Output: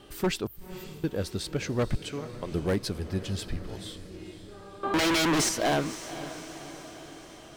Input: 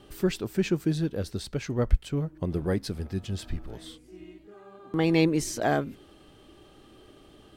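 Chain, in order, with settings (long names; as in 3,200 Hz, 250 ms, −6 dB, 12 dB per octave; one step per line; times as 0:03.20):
0:01.99–0:02.52: meter weighting curve A
0:04.83–0:05.49: mid-hump overdrive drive 29 dB, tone 1,600 Hz, clips at −10 dBFS
low-shelf EQ 490 Hz −4.5 dB
wave folding −22.5 dBFS
0:00.47–0:01.04: inverse Chebyshev band-stop filter 210–7,700 Hz, stop band 40 dB
on a send: feedback delay with all-pass diffusion 511 ms, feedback 58%, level −13.5 dB
on the sum: level +3.5 dB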